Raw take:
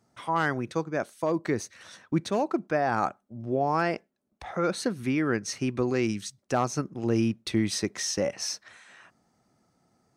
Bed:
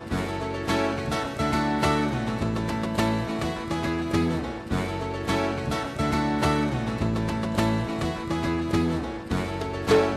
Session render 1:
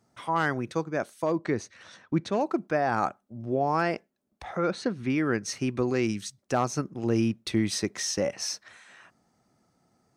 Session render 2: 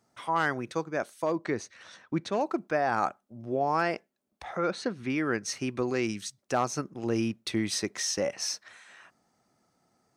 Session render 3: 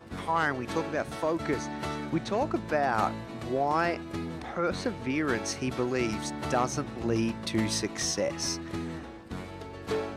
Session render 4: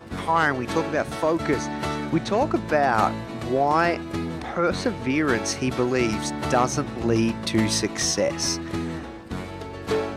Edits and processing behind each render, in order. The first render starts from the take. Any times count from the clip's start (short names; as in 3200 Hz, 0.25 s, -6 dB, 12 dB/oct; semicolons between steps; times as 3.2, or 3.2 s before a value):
1.33–2.41 air absorption 70 m; 4.57–5.1 air absorption 100 m
low shelf 280 Hz -7 dB
add bed -11.5 dB
gain +6.5 dB